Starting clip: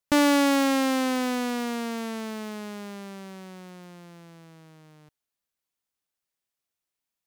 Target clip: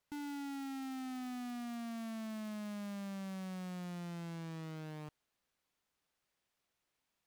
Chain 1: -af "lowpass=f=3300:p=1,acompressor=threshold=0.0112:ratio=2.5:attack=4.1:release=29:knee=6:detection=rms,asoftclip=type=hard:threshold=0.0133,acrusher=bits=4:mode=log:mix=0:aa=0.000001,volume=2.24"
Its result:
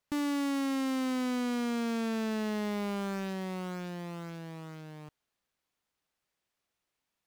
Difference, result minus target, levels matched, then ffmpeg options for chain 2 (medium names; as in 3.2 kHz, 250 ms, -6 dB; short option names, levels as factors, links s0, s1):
hard clipper: distortion -6 dB
-af "lowpass=f=3300:p=1,acompressor=threshold=0.0112:ratio=2.5:attack=4.1:release=29:knee=6:detection=rms,asoftclip=type=hard:threshold=0.00376,acrusher=bits=4:mode=log:mix=0:aa=0.000001,volume=2.24"